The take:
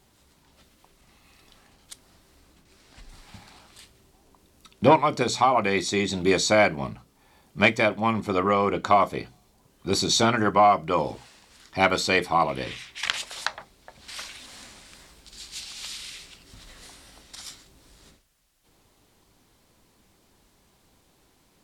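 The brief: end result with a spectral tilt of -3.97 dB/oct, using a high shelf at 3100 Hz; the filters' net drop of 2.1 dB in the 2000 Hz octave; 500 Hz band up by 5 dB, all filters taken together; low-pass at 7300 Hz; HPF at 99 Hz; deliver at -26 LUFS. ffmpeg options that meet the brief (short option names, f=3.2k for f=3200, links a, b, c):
-af "highpass=99,lowpass=7.3k,equalizer=f=500:t=o:g=6.5,equalizer=f=2k:t=o:g=-4,highshelf=f=3.1k:g=3,volume=-5.5dB"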